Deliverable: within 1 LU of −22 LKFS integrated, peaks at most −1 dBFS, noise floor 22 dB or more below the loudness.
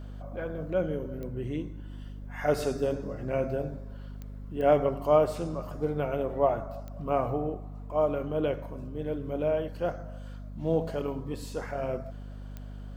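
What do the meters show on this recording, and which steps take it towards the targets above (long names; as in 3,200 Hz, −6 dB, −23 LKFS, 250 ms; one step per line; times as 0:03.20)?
number of clicks 5; mains hum 50 Hz; hum harmonics up to 250 Hz; level of the hum −38 dBFS; integrated loudness −30.5 LKFS; sample peak −10.5 dBFS; target loudness −22.0 LKFS
→ click removal
hum removal 50 Hz, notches 5
level +8.5 dB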